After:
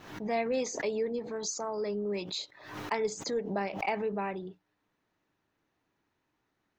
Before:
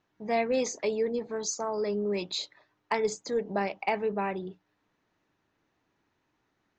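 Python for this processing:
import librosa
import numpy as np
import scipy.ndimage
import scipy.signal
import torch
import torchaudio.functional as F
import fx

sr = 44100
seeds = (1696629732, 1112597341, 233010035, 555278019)

y = fx.pre_swell(x, sr, db_per_s=76.0)
y = y * 10.0 ** (-3.5 / 20.0)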